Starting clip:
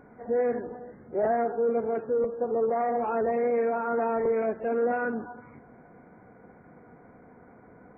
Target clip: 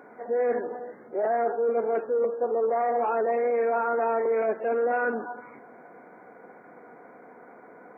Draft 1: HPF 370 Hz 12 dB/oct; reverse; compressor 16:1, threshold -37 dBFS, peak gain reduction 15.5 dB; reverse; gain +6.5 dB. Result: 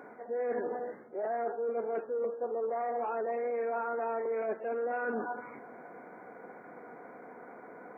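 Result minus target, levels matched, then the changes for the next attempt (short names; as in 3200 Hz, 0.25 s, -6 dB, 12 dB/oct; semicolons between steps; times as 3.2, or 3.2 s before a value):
compressor: peak gain reduction +8.5 dB
change: compressor 16:1, threshold -28 dBFS, peak gain reduction 7 dB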